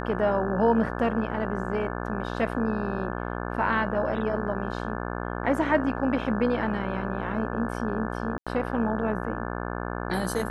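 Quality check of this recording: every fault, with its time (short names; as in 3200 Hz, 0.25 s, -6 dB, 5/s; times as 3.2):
buzz 60 Hz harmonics 29 -32 dBFS
8.38–8.47 gap 86 ms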